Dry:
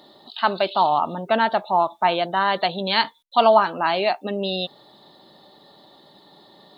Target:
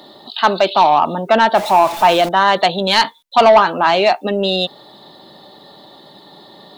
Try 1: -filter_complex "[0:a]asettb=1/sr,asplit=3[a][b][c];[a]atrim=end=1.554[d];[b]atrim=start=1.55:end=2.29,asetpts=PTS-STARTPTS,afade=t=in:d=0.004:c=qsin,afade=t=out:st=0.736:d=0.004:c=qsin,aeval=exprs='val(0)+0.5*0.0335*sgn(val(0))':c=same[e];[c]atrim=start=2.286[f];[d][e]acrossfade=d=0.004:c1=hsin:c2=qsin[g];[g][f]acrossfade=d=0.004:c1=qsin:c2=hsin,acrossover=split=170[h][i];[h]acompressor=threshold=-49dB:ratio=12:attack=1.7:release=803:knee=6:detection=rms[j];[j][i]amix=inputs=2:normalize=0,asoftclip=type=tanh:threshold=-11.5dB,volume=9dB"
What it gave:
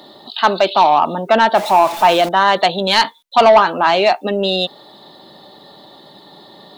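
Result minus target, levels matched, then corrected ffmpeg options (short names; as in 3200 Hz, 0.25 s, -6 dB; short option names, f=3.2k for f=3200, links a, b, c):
compressor: peak gain reduction +6.5 dB
-filter_complex "[0:a]asettb=1/sr,asplit=3[a][b][c];[a]atrim=end=1.554[d];[b]atrim=start=1.55:end=2.29,asetpts=PTS-STARTPTS,afade=t=in:d=0.004:c=qsin,afade=t=out:st=0.736:d=0.004:c=qsin,aeval=exprs='val(0)+0.5*0.0335*sgn(val(0))':c=same[e];[c]atrim=start=2.286[f];[d][e]acrossfade=d=0.004:c1=hsin:c2=qsin[g];[g][f]acrossfade=d=0.004:c1=qsin:c2=hsin,acrossover=split=170[h][i];[h]acompressor=threshold=-42dB:ratio=12:attack=1.7:release=803:knee=6:detection=rms[j];[j][i]amix=inputs=2:normalize=0,asoftclip=type=tanh:threshold=-11.5dB,volume=9dB"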